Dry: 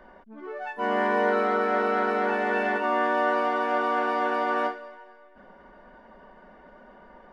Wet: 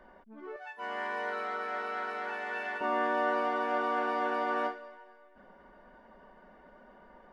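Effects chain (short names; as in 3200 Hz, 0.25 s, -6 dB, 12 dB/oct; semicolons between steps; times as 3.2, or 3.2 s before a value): 0.56–2.81 HPF 1400 Hz 6 dB/oct; gain -5.5 dB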